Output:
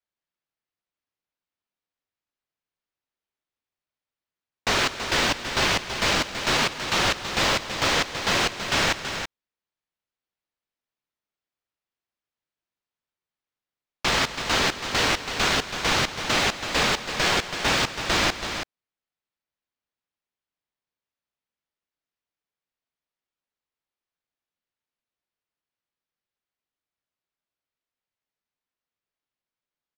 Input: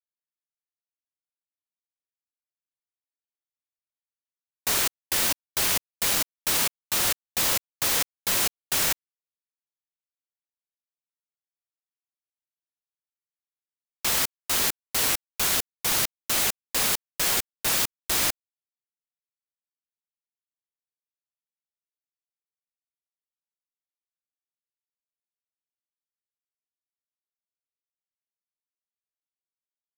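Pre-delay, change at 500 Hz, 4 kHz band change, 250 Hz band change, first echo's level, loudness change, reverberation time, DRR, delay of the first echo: no reverb audible, +8.5 dB, +4.5 dB, +9.0 dB, −14.0 dB, +0.5 dB, no reverb audible, no reverb audible, 165 ms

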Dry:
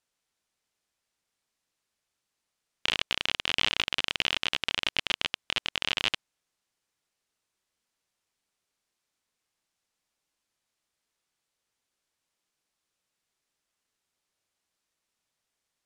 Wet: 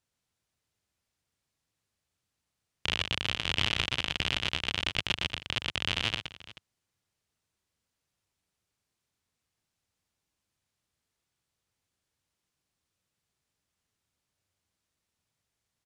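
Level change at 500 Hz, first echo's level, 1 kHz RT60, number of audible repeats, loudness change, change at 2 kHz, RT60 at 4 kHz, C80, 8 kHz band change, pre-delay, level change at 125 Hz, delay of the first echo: 0.0 dB, −7.5 dB, no reverb audible, 2, −1.5 dB, −1.5 dB, no reverb audible, no reverb audible, −1.5 dB, no reverb audible, +10.5 dB, 119 ms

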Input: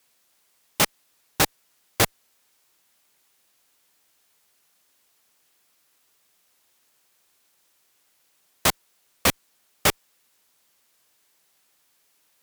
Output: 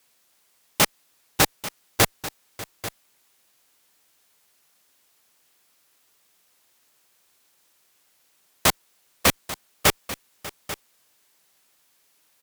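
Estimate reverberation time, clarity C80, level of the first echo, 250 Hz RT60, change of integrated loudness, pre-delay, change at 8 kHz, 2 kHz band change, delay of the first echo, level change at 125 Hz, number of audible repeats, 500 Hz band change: no reverb audible, no reverb audible, −18.0 dB, no reverb audible, −0.5 dB, no reverb audible, +1.5 dB, +1.5 dB, 593 ms, +2.0 dB, 2, +1.5 dB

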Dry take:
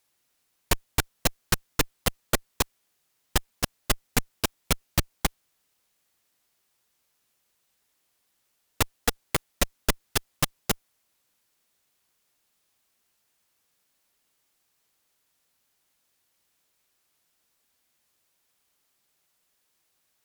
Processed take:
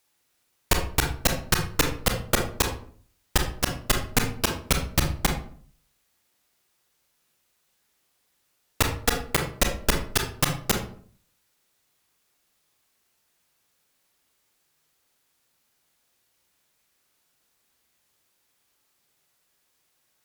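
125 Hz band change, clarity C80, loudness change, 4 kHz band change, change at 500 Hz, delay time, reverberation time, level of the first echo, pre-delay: +4.5 dB, 11.5 dB, +3.0 dB, +2.5 dB, +3.5 dB, no echo audible, 0.50 s, no echo audible, 26 ms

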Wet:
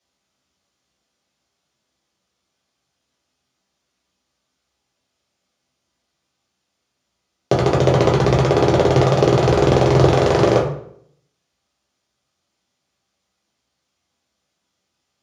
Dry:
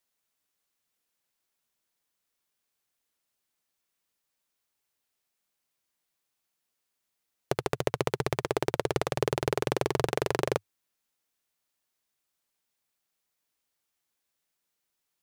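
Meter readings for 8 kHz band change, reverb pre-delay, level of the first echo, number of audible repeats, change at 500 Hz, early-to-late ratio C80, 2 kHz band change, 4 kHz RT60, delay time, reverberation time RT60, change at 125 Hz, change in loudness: +8.0 dB, 3 ms, no echo audible, no echo audible, +14.5 dB, 9.5 dB, +9.5 dB, 0.45 s, no echo audible, 0.65 s, +19.0 dB, +14.5 dB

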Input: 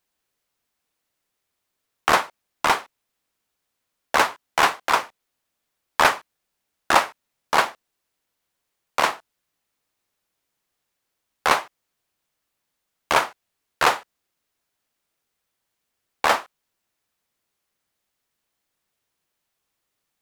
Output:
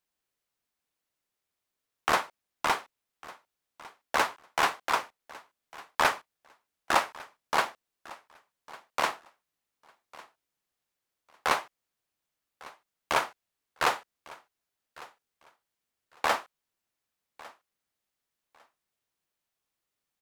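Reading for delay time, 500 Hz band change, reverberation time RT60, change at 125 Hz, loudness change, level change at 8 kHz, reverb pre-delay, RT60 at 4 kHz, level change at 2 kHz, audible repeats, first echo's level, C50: 1,152 ms, −7.5 dB, no reverb audible, −7.5 dB, −7.5 dB, −7.5 dB, no reverb audible, no reverb audible, −7.5 dB, 2, −21.0 dB, no reverb audible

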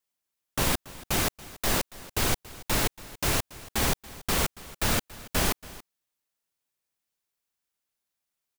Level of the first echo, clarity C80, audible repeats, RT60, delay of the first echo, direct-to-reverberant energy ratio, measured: −19.0 dB, no reverb audible, 1, no reverb audible, 281 ms, no reverb audible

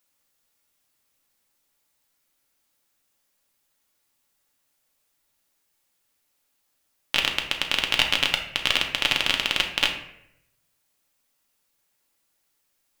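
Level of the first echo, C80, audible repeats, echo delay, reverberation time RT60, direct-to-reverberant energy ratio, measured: no echo audible, 10.5 dB, no echo audible, no echo audible, 0.75 s, 2.0 dB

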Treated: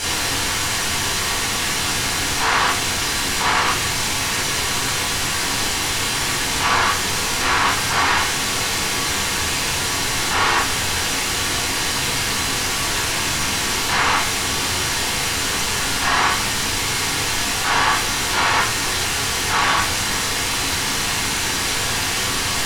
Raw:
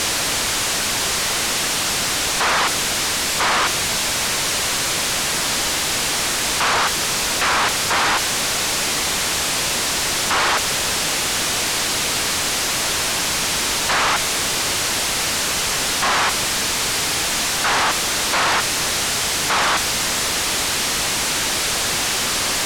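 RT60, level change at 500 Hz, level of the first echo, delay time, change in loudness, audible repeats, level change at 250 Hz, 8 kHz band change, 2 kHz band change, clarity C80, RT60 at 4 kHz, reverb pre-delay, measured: 0.40 s, −1.5 dB, no echo audible, no echo audible, −0.5 dB, no echo audible, +1.5 dB, −2.0 dB, +0.5 dB, 9.5 dB, 0.30 s, 21 ms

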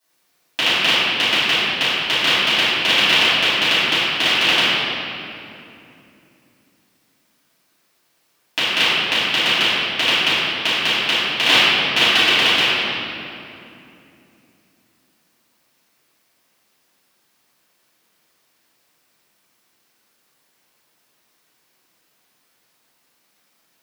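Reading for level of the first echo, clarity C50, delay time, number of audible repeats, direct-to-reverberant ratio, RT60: no echo audible, −5.0 dB, no echo audible, no echo audible, −15.5 dB, 2.8 s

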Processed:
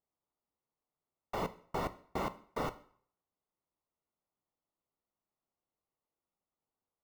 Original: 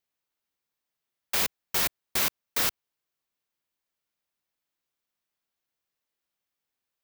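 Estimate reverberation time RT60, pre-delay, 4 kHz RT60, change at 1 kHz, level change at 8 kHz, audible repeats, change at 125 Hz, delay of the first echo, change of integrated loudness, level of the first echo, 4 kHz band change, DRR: 0.55 s, 3 ms, 0.50 s, −1.0 dB, −26.5 dB, no echo audible, +1.5 dB, no echo audible, −13.0 dB, no echo audible, −20.5 dB, 12.0 dB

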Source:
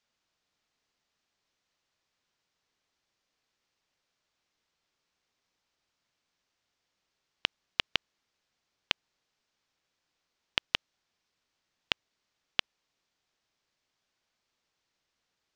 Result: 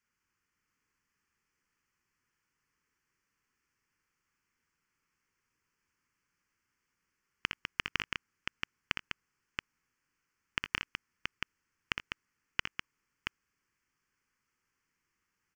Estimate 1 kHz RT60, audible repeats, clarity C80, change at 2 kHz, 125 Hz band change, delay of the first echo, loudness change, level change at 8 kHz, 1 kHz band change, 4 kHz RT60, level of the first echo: no reverb audible, 3, no reverb audible, +1.0 dB, +3.0 dB, 61 ms, −5.5 dB, −1.0 dB, +0.5 dB, no reverb audible, −6.0 dB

